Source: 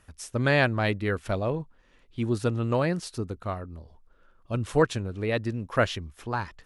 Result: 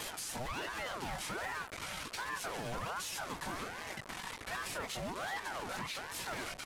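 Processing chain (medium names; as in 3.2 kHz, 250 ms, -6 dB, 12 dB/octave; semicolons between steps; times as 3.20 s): one-bit delta coder 64 kbps, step -30.5 dBFS; high-pass 210 Hz 12 dB/octave; comb 5.3 ms, depth 94%; compression, threshold -23 dBFS, peak gain reduction 9 dB; overload inside the chain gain 28.5 dB; chorus voices 6, 0.36 Hz, delay 18 ms, depth 2.2 ms; peak limiter -33 dBFS, peak gain reduction 8.5 dB; ring modulator with a swept carrier 880 Hz, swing 60%, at 1.3 Hz; trim +3.5 dB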